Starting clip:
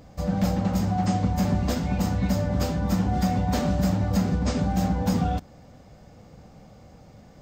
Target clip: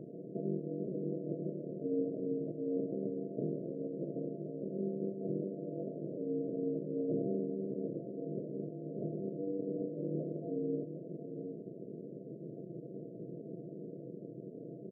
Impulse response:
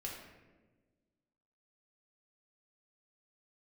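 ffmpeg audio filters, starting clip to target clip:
-filter_complex "[0:a]asetrate=21918,aresample=44100,acompressor=threshold=0.0141:ratio=6,afftfilt=real='re*between(b*sr/4096,210,600)':imag='im*between(b*sr/4096,210,600)':win_size=4096:overlap=0.75,aeval=exprs='val(0)*sin(2*PI*93*n/s)':c=same,asplit=2[s0][s1];[s1]adelay=758,volume=0.355,highshelf=f=4000:g=-17.1[s2];[s0][s2]amix=inputs=2:normalize=0,volume=4.22"

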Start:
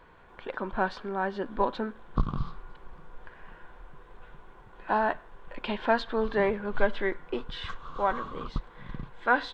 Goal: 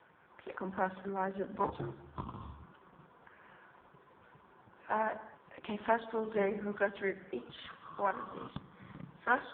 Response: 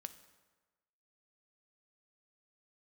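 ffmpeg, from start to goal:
-filter_complex "[1:a]atrim=start_sample=2205,afade=t=out:st=0.32:d=0.01,atrim=end_sample=14553[s0];[0:a][s0]afir=irnorm=-1:irlink=0,aeval=exprs='0.178*(cos(1*acos(clip(val(0)/0.178,-1,1)))-cos(1*PI/2))+0.01*(cos(2*acos(clip(val(0)/0.178,-1,1)))-cos(2*PI/2))+0.0178*(cos(3*acos(clip(val(0)/0.178,-1,1)))-cos(3*PI/2))+0.00447*(cos(6*acos(clip(val(0)/0.178,-1,1)))-cos(6*PI/2))':c=same,acrossover=split=380|630[s1][s2][s3];[s2]crystalizer=i=1:c=0[s4];[s1][s4][s3]amix=inputs=3:normalize=0,asettb=1/sr,asplit=3[s5][s6][s7];[s5]atrim=end=1.644[s8];[s6]atrim=start=1.64:end=2.63,asetpts=PTS-STARTPTS,afade=t=in:d=0.004:c=qsin,afade=t=out:st=0.986:d=0.004:c=qsin,afreqshift=-82[s9];[s7]atrim=start=2.626[s10];[s8][s9]acrossfade=d=0.004:c1=hsin:c2=qsin[s11];[s11][s10]acrossfade=d=0.004:c1=qsin:c2=hsin,asplit=2[s12][s13];[s13]acompressor=threshold=0.00891:ratio=8,volume=0.75[s14];[s12][s14]amix=inputs=2:normalize=0" -ar 8000 -c:a libopencore_amrnb -b:a 4750

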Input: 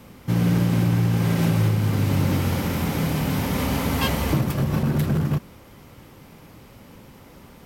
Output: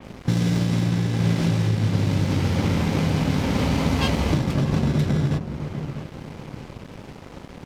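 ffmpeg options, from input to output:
-filter_complex "[0:a]asplit=2[s0][s1];[s1]acrusher=samples=24:mix=1:aa=0.000001,volume=0.562[s2];[s0][s2]amix=inputs=2:normalize=0,lowpass=6300,acrossover=split=3800[s3][s4];[s3]acompressor=threshold=0.0447:ratio=5[s5];[s5][s4]amix=inputs=2:normalize=0,asplit=2[s6][s7];[s7]adelay=644,lowpass=f=850:p=1,volume=0.376,asplit=2[s8][s9];[s9]adelay=644,lowpass=f=850:p=1,volume=0.46,asplit=2[s10][s11];[s11]adelay=644,lowpass=f=850:p=1,volume=0.46,asplit=2[s12][s13];[s13]adelay=644,lowpass=f=850:p=1,volume=0.46,asplit=2[s14][s15];[s15]adelay=644,lowpass=f=850:p=1,volume=0.46[s16];[s6][s8][s10][s12][s14][s16]amix=inputs=6:normalize=0,aeval=exprs='sgn(val(0))*max(abs(val(0))-0.00596,0)':c=same,adynamicequalizer=threshold=0.00178:dfrequency=4200:dqfactor=0.7:tfrequency=4200:tqfactor=0.7:attack=5:release=100:ratio=0.375:range=3.5:mode=cutabove:tftype=highshelf,volume=2.51"

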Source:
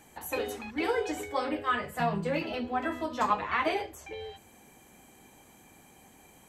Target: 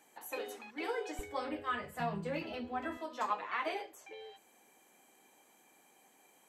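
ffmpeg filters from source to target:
-af "asetnsamples=n=441:p=0,asendcmd='1.19 highpass f 44;2.97 highpass f 350',highpass=320,volume=0.422"

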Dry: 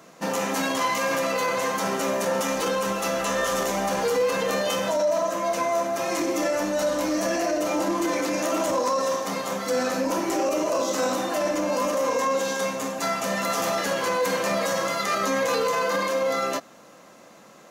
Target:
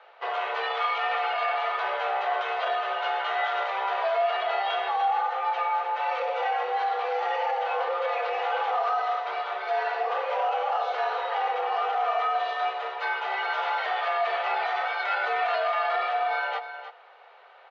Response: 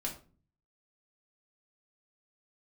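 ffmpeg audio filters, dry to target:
-filter_complex "[0:a]asplit=2[s0][s1];[s1]aecho=0:1:310:0.282[s2];[s0][s2]amix=inputs=2:normalize=0,highpass=f=300:t=q:w=0.5412,highpass=f=300:t=q:w=1.307,lowpass=f=3500:t=q:w=0.5176,lowpass=f=3500:t=q:w=0.7071,lowpass=f=3500:t=q:w=1.932,afreqshift=190,volume=0.794"

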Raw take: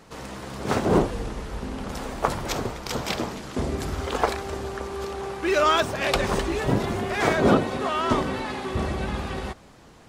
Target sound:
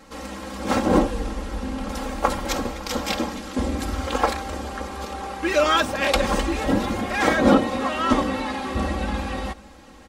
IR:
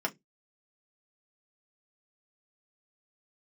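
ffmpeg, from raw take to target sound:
-af "aecho=1:1:3.7:0.92,aecho=1:1:559:0.0668"

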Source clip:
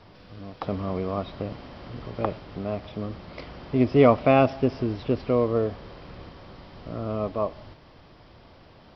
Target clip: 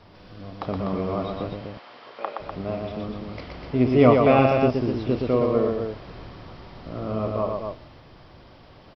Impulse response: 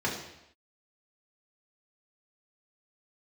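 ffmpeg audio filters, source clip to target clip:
-filter_complex "[0:a]asettb=1/sr,asplit=3[s0][s1][s2];[s0]atrim=end=1.544[s3];[s1]atrim=start=1.54:end=2.4,asetpts=PTS-STARTPTS,afade=t=in:d=0.004:c=qsin,afade=t=out:st=0.856:d=0.004:c=qsin,highpass=700,lowpass=5000[s4];[s2]atrim=start=2.396[s5];[s3][s4]acrossfade=d=0.004:c1=hsin:c2=qsin[s6];[s6][s5]acrossfade=d=0.004:c1=qsin:c2=hsin,aecho=1:1:32.07|119.5|247.8:0.251|0.631|0.501"

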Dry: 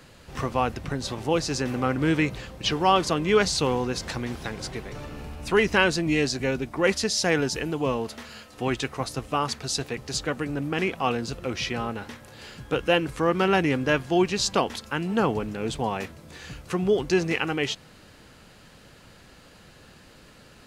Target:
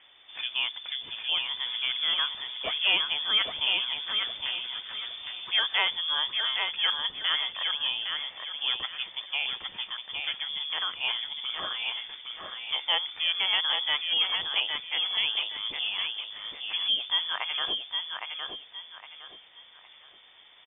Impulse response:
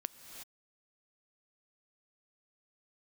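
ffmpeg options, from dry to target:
-af "lowpass=f=3100:t=q:w=0.5098,lowpass=f=3100:t=q:w=0.6013,lowpass=f=3100:t=q:w=0.9,lowpass=f=3100:t=q:w=2.563,afreqshift=-3600,aecho=1:1:812|1624|2436|3248:0.562|0.174|0.054|0.0168,volume=0.531"

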